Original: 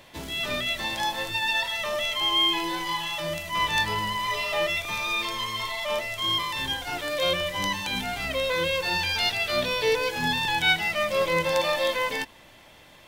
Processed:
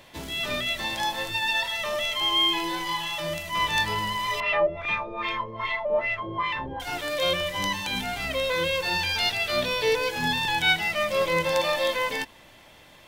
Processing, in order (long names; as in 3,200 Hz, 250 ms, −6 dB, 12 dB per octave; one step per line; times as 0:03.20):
0:04.40–0:06.80: auto-filter low-pass sine 2.5 Hz 480–2,600 Hz